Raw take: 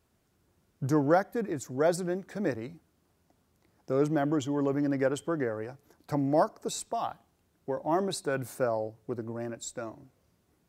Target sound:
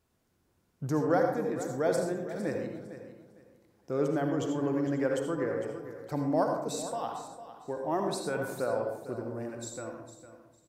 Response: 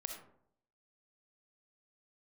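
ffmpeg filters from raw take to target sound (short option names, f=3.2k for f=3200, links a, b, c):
-filter_complex "[0:a]aecho=1:1:455|910|1365:0.224|0.0515|0.0118[a];[1:a]atrim=start_sample=2205,asetrate=34398,aresample=44100[b];[a][b]afir=irnorm=-1:irlink=0,volume=-1.5dB"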